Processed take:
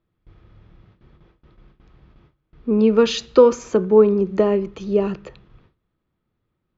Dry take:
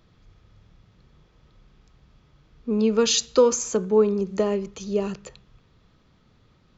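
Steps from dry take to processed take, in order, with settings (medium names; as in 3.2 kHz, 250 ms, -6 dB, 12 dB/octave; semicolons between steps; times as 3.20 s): gate with hold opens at -46 dBFS; low-pass 2.7 kHz 12 dB/octave; peaking EQ 340 Hz +7.5 dB 0.22 oct; trim +5 dB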